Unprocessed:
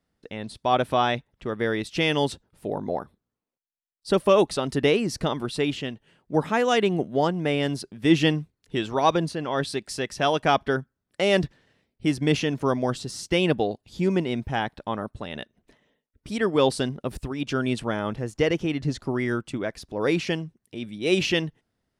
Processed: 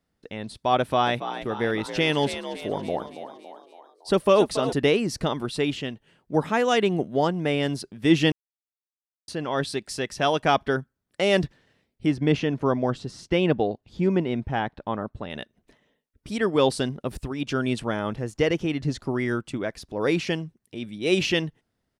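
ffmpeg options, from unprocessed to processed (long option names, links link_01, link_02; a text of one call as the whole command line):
ffmpeg -i in.wav -filter_complex "[0:a]asplit=3[link_01][link_02][link_03];[link_01]afade=type=out:start_time=1.05:duration=0.02[link_04];[link_02]asplit=7[link_05][link_06][link_07][link_08][link_09][link_10][link_11];[link_06]adelay=280,afreqshift=56,volume=-11dB[link_12];[link_07]adelay=560,afreqshift=112,volume=-16.5dB[link_13];[link_08]adelay=840,afreqshift=168,volume=-22dB[link_14];[link_09]adelay=1120,afreqshift=224,volume=-27.5dB[link_15];[link_10]adelay=1400,afreqshift=280,volume=-33.1dB[link_16];[link_11]adelay=1680,afreqshift=336,volume=-38.6dB[link_17];[link_05][link_12][link_13][link_14][link_15][link_16][link_17]amix=inputs=7:normalize=0,afade=type=in:start_time=1.05:duration=0.02,afade=type=out:start_time=4.72:duration=0.02[link_18];[link_03]afade=type=in:start_time=4.72:duration=0.02[link_19];[link_04][link_18][link_19]amix=inputs=3:normalize=0,asettb=1/sr,asplit=3[link_20][link_21][link_22];[link_20]atrim=end=12.064[link_23];[link_21]atrim=start=12.06:end=15.3,asetpts=PTS-STARTPTS,afade=type=in:duration=0.004:curve=qsin,afade=type=out:start_time=3.236:duration=0.004:curve=qsin,aemphasis=mode=reproduction:type=75fm[link_24];[link_22]atrim=start=15.296[link_25];[link_23][link_24]acrossfade=duration=0.004:curve1=hsin:curve2=qsin[link_26];[link_26][link_25]acrossfade=duration=0.004:curve1=qsin:curve2=hsin,asplit=3[link_27][link_28][link_29];[link_27]atrim=end=8.32,asetpts=PTS-STARTPTS,afade=type=out:start_time=8.316:duration=0.004:curve=hsin[link_30];[link_28]atrim=start=8.32:end=9.28,asetpts=PTS-STARTPTS,volume=0[link_31];[link_29]atrim=start=9.28,asetpts=PTS-STARTPTS,afade=type=in:duration=0.004:curve=hsin[link_32];[link_30][link_31][link_32]concat=n=3:v=0:a=1" out.wav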